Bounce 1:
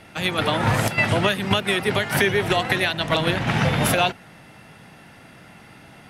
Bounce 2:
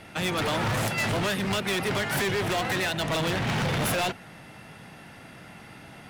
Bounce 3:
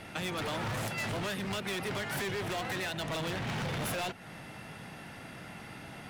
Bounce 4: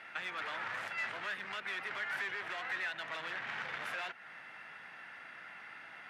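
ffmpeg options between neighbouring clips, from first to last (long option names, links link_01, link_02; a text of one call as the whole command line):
ffmpeg -i in.wav -af "volume=24.5dB,asoftclip=hard,volume=-24.5dB" out.wav
ffmpeg -i in.wav -af "acompressor=threshold=-37dB:ratio=3" out.wav
ffmpeg -i in.wav -af "bandpass=frequency=1700:width_type=q:width=1.9:csg=0,volume=2.5dB" out.wav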